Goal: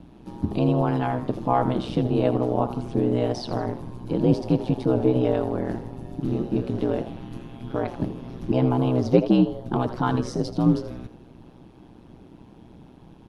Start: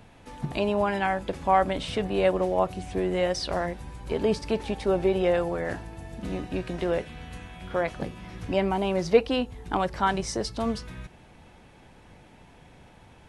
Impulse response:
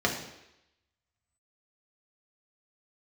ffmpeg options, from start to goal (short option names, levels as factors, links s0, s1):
-filter_complex "[0:a]equalizer=f=250:t=o:w=1:g=11,equalizer=f=500:t=o:w=1:g=-5,equalizer=f=2000:t=o:w=1:g=-12,equalizer=f=8000:t=o:w=1:g=-12,aeval=exprs='val(0)*sin(2*PI*62*n/s)':c=same,asplit=2[s0][s1];[s1]asplit=4[s2][s3][s4][s5];[s2]adelay=80,afreqshift=120,volume=0.211[s6];[s3]adelay=160,afreqshift=240,volume=0.0822[s7];[s4]adelay=240,afreqshift=360,volume=0.032[s8];[s5]adelay=320,afreqshift=480,volume=0.0126[s9];[s6][s7][s8][s9]amix=inputs=4:normalize=0[s10];[s0][s10]amix=inputs=2:normalize=0,volume=1.68"